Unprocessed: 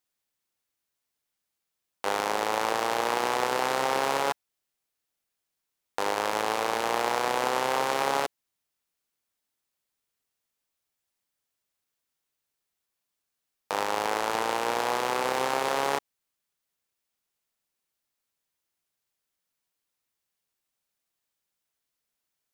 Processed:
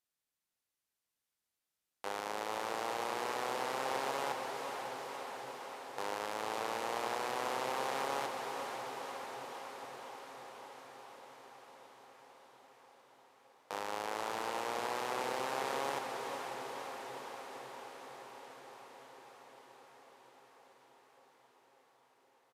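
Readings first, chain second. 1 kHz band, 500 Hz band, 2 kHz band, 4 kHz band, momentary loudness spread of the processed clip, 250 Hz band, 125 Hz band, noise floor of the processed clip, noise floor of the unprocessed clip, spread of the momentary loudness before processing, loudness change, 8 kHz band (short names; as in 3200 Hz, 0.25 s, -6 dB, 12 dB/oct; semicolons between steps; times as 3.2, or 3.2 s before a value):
-9.0 dB, -9.0 dB, -9.5 dB, -9.5 dB, 19 LU, -9.0 dB, -9.0 dB, under -85 dBFS, -84 dBFS, 5 LU, -11.5 dB, -9.5 dB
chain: limiter -18 dBFS, peak gain reduction 8 dB; on a send: diffused feedback echo 0.488 s, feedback 75%, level -5.5 dB; on the sum: downsampling 32000 Hz; gain -6 dB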